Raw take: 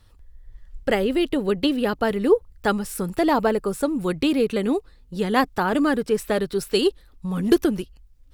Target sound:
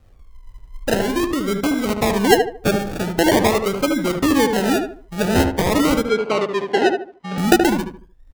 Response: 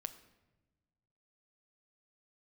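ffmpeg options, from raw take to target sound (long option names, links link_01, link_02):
-filter_complex "[0:a]asettb=1/sr,asplit=3[link_01][link_02][link_03];[link_01]atrim=end=0.944[link_04];[link_02]atrim=start=0.94:end=1.89,asetpts=PTS-STARTPTS,afade=type=in:duration=0.004:curve=qsin,afade=type=out:start_time=0.946:duration=0.004:curve=qsin,equalizer=frequency=960:width_type=o:width=1.9:gain=-11.5[link_05];[link_03]atrim=start=1.886[link_06];[link_04][link_05]acrossfade=duration=0.004:curve1=hsin:curve2=qsin[link_07];[link_07][link_06]acrossfade=duration=0.004:curve1=qsin:curve2=hsin,acrusher=samples=34:mix=1:aa=0.000001:lfo=1:lforange=20.4:lforate=0.45,asettb=1/sr,asplit=3[link_08][link_09][link_10];[link_08]atrim=end=6.054[link_11];[link_09]atrim=start=6.05:end=7.38,asetpts=PTS-STARTPTS,afade=type=in:duration=0.004:curve=qsin,afade=type=out:start_time=1.326:duration=0.004:curve=qsin,highpass=250,lowpass=4000[link_12];[link_10]atrim=start=7.376[link_13];[link_11][link_12]acrossfade=duration=0.004:curve1=hsin:curve2=qsin[link_14];[link_14][link_13]acrossfade=duration=0.004:curve1=qsin:curve2=hsin,asplit=2[link_15][link_16];[link_16]adelay=75,lowpass=frequency=1600:poles=1,volume=-4.5dB,asplit=2[link_17][link_18];[link_18]adelay=75,lowpass=frequency=1600:poles=1,volume=0.33,asplit=2[link_19][link_20];[link_20]adelay=75,lowpass=frequency=1600:poles=1,volume=0.33,asplit=2[link_21][link_22];[link_22]adelay=75,lowpass=frequency=1600:poles=1,volume=0.33[link_23];[link_15][link_17][link_19][link_21][link_23]amix=inputs=5:normalize=0,volume=3dB"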